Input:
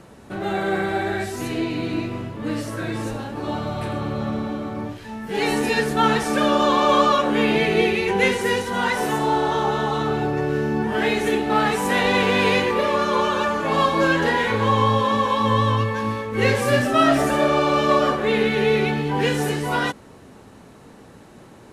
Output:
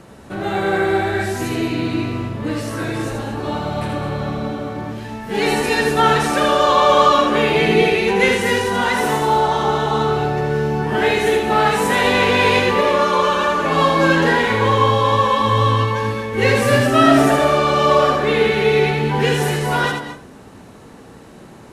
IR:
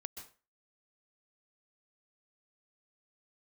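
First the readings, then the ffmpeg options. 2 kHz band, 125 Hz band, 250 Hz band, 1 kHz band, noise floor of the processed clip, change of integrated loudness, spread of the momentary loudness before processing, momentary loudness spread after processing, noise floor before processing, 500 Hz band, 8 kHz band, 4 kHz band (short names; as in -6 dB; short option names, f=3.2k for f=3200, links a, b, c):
+4.0 dB, +5.0 dB, +2.0 dB, +4.5 dB, -41 dBFS, +4.0 dB, 10 LU, 11 LU, -46 dBFS, +4.5 dB, +4.5 dB, +4.5 dB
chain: -filter_complex "[0:a]asplit=2[a][b];[1:a]atrim=start_sample=2205,adelay=80[c];[b][c]afir=irnorm=-1:irlink=0,volume=-0.5dB[d];[a][d]amix=inputs=2:normalize=0,volume=3dB"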